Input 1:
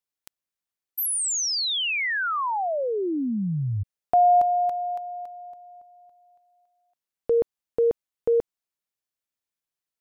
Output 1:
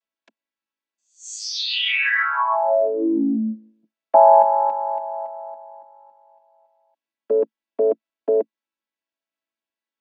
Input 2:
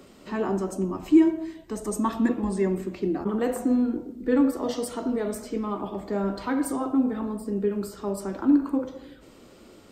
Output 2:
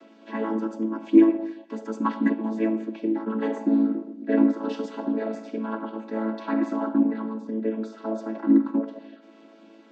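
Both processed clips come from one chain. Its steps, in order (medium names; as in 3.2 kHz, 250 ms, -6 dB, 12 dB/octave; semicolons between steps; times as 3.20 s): vocoder on a held chord major triad, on A3; low-pass 3.1 kHz 12 dB/octave; tilt EQ +3.5 dB/octave; trim +8 dB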